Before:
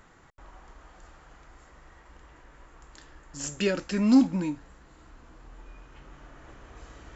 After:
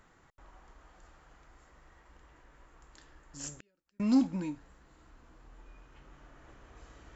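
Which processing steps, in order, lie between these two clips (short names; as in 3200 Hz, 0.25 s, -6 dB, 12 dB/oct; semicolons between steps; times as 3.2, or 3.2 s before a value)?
3.51–4 flipped gate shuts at -29 dBFS, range -42 dB; gain -6.5 dB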